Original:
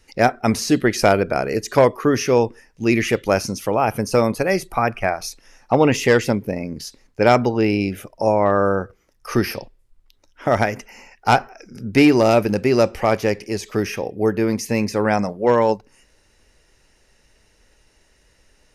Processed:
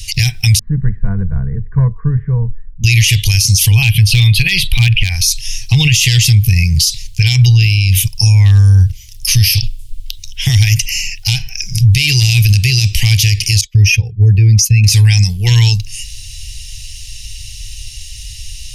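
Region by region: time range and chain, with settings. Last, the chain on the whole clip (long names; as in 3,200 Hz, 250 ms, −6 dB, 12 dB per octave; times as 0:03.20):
0:00.59–0:02.84: Butterworth low-pass 1,400 Hz 48 dB per octave + phaser with its sweep stopped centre 530 Hz, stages 8
0:03.82–0:05.10: high shelf with overshoot 4,700 Hz −11 dB, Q 3 + hard clipping −8.5 dBFS
0:13.61–0:14.84: expanding power law on the bin magnitudes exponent 1.7 + downward expander −28 dBFS
whole clip: elliptic band-stop filter 110–3,000 Hz, stop band 40 dB; downward compressor, threshold −33 dBFS; boost into a limiter +33 dB; level −1 dB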